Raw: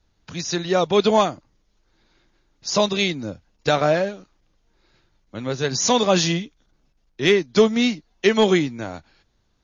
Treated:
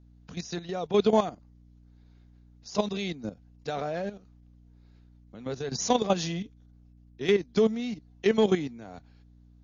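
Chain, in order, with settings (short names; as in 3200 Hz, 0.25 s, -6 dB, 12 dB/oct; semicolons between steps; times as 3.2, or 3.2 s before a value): small resonant body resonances 210/440/710 Hz, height 7 dB, ringing for 30 ms; hum 60 Hz, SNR 27 dB; level quantiser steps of 12 dB; gain -7.5 dB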